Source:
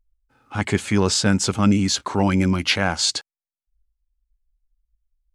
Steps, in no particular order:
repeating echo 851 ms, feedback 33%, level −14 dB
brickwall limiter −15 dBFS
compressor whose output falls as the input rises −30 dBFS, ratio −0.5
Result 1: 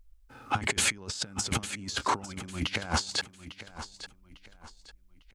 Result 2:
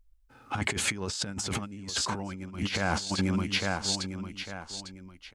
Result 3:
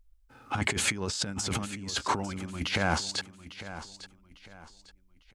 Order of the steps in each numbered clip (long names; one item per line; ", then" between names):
compressor whose output falls as the input rises, then repeating echo, then brickwall limiter
repeating echo, then brickwall limiter, then compressor whose output falls as the input rises
brickwall limiter, then compressor whose output falls as the input rises, then repeating echo